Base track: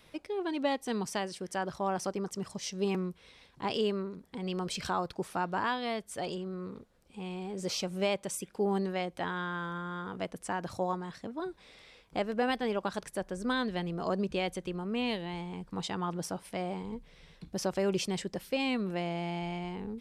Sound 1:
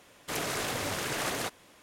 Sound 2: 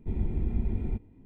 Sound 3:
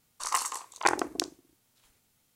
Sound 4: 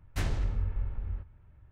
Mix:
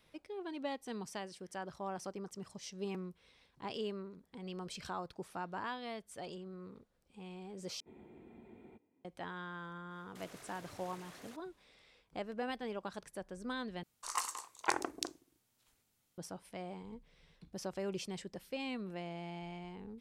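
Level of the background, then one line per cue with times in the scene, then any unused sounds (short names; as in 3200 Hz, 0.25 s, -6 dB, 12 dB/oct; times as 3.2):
base track -9.5 dB
7.8 replace with 2 -11 dB + HPF 390 Hz
9.87 add 1 -15.5 dB, fades 0.10 s + level quantiser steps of 10 dB
13.83 replace with 3 -8 dB
not used: 4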